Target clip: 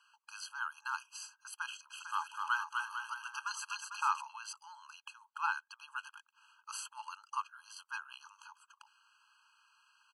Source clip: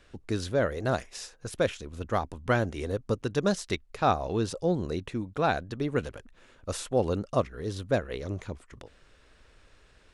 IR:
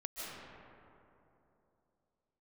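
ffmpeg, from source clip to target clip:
-filter_complex "[0:a]asplit=3[link_01][link_02][link_03];[link_01]afade=type=out:start_time=1.9:duration=0.02[link_04];[link_02]aecho=1:1:250|450|610|738|840.4:0.631|0.398|0.251|0.158|0.1,afade=type=in:start_time=1.9:duration=0.02,afade=type=out:start_time=4.2:duration=0.02[link_05];[link_03]afade=type=in:start_time=4.2:duration=0.02[link_06];[link_04][link_05][link_06]amix=inputs=3:normalize=0,afftfilt=real='re*eq(mod(floor(b*sr/1024/820),2),1)':imag='im*eq(mod(floor(b*sr/1024/820),2),1)':win_size=1024:overlap=0.75,volume=-2dB"

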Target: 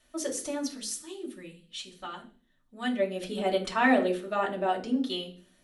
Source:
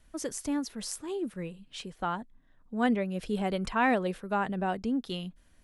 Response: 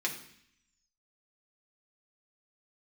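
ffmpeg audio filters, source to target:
-filter_complex "[0:a]asplit=3[link_01][link_02][link_03];[link_01]afade=type=out:start_time=0.76:duration=0.02[link_04];[link_02]equalizer=frequency=560:width=0.38:gain=-11.5,afade=type=in:start_time=0.76:duration=0.02,afade=type=out:start_time=2.98:duration=0.02[link_05];[link_03]afade=type=in:start_time=2.98:duration=0.02[link_06];[link_04][link_05][link_06]amix=inputs=3:normalize=0[link_07];[1:a]atrim=start_sample=2205,asetrate=74970,aresample=44100[link_08];[link_07][link_08]afir=irnorm=-1:irlink=0,volume=3dB"

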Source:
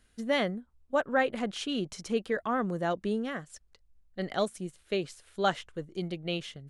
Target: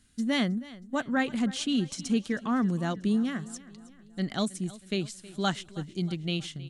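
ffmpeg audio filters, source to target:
ffmpeg -i in.wav -filter_complex "[0:a]equalizer=frequency=125:width_type=o:width=1:gain=8,equalizer=frequency=250:width_type=o:width=1:gain=9,equalizer=frequency=500:width_type=o:width=1:gain=-8,equalizer=frequency=4000:width_type=o:width=1:gain=4,equalizer=frequency=8000:width_type=o:width=1:gain=9,asplit=2[link_01][link_02];[link_02]aecho=0:1:318|636|954|1272:0.112|0.0595|0.0315|0.0167[link_03];[link_01][link_03]amix=inputs=2:normalize=0,volume=-1.5dB" out.wav

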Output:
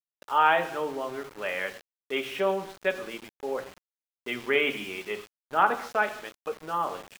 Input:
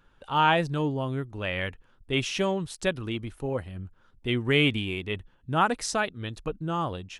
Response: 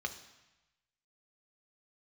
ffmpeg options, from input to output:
-filter_complex "[0:a]highpass=400,lowpass=2400[link_01];[1:a]atrim=start_sample=2205,afade=type=out:start_time=0.3:duration=0.01,atrim=end_sample=13671[link_02];[link_01][link_02]afir=irnorm=-1:irlink=0,aeval=exprs='val(0)*gte(abs(val(0)),0.00891)':channel_layout=same"

